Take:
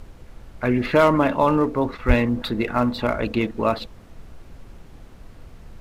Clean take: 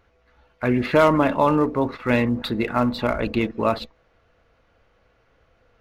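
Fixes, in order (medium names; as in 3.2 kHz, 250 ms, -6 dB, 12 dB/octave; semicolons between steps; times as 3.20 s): clip repair -7 dBFS; de-plosive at 2.07 s; noise print and reduce 18 dB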